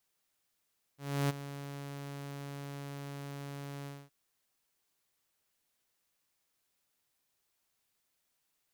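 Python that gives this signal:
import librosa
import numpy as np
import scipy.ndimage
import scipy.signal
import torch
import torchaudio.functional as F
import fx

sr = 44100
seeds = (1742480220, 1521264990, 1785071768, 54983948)

y = fx.adsr_tone(sr, wave='saw', hz=141.0, attack_ms=314.0, decay_ms=21.0, sustain_db=-14.0, held_s=2.88, release_ms=236.0, level_db=-24.5)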